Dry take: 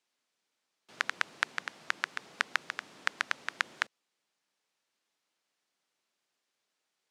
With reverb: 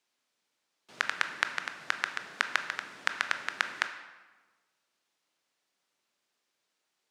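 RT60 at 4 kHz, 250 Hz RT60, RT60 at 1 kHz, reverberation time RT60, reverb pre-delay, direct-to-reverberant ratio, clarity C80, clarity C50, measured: 0.90 s, 1.4 s, 1.3 s, 1.3 s, 18 ms, 7.5 dB, 11.5 dB, 9.5 dB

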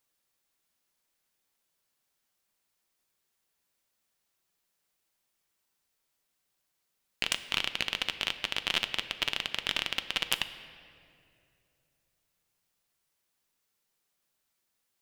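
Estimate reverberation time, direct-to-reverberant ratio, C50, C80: 2.5 s, 9.5 dB, 12.0 dB, 12.5 dB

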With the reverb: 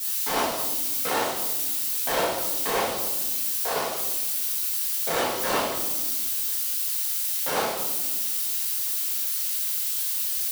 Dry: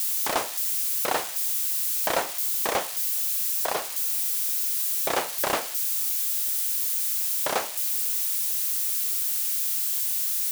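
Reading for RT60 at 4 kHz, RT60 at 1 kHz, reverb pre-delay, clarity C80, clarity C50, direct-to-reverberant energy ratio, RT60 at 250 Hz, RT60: 0.90 s, 1.1 s, 4 ms, 4.0 dB, 1.0 dB, -10.5 dB, 2.3 s, 1.3 s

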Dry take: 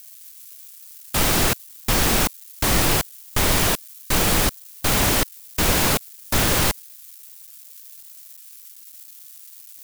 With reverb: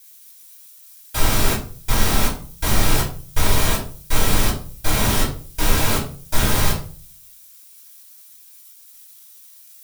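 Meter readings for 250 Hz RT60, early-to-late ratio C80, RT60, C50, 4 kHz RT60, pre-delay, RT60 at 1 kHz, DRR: 0.60 s, 12.5 dB, 0.45 s, 8.5 dB, 0.30 s, 3 ms, 0.40 s, -6.0 dB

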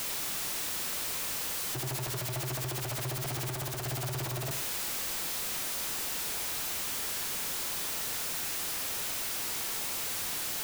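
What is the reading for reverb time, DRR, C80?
0.50 s, 8.0 dB, 13.5 dB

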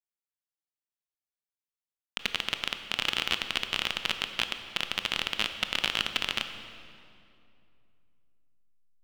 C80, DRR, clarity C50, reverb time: 9.5 dB, 7.5 dB, 8.5 dB, 2.6 s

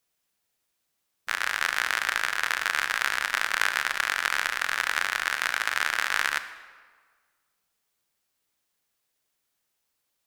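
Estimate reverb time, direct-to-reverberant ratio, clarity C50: 1.6 s, 11.0 dB, 12.5 dB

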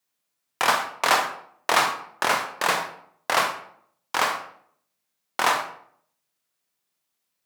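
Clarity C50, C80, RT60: 7.5 dB, 11.0 dB, 0.60 s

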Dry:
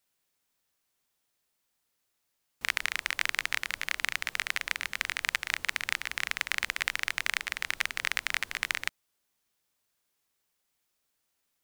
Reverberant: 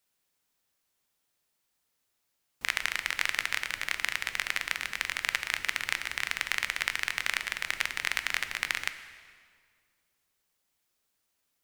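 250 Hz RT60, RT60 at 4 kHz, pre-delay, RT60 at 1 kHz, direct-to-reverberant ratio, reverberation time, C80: 2.2 s, 1.6 s, 11 ms, 1.8 s, 9.5 dB, 1.9 s, 12.5 dB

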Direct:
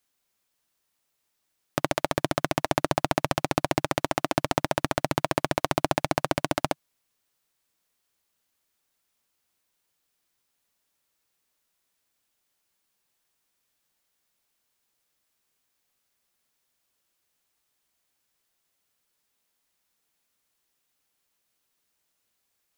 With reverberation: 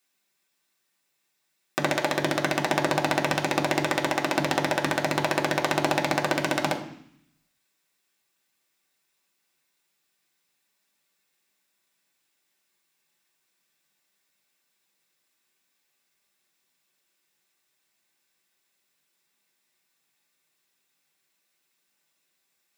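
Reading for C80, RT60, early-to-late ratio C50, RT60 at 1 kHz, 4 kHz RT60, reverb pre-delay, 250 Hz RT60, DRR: 13.5 dB, 0.65 s, 10.5 dB, 0.65 s, 0.80 s, 3 ms, 0.90 s, -1.0 dB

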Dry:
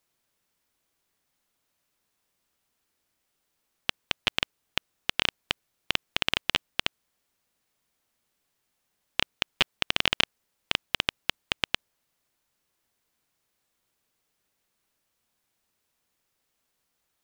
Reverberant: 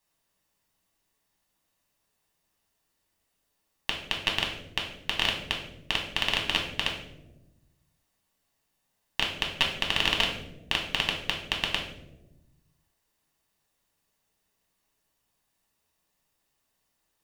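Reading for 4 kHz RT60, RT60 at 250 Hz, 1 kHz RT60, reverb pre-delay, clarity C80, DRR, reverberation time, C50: 0.55 s, 1.6 s, 0.80 s, 3 ms, 9.0 dB, -0.5 dB, 1.0 s, 6.0 dB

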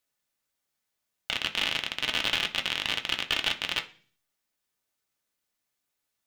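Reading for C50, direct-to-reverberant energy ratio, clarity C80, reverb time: 15.5 dB, 3.5 dB, 20.5 dB, 0.45 s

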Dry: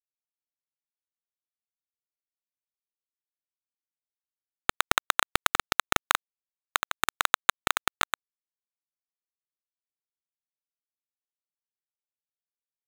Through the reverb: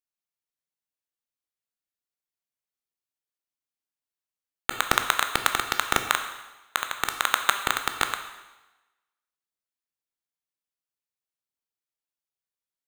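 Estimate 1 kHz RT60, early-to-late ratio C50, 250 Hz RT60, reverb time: 1.1 s, 8.5 dB, 1.0 s, 1.1 s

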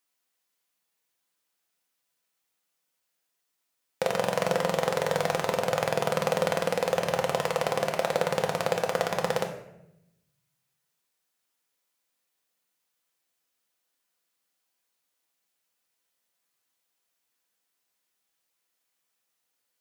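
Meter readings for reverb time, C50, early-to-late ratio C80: 0.85 s, 8.0 dB, 10.5 dB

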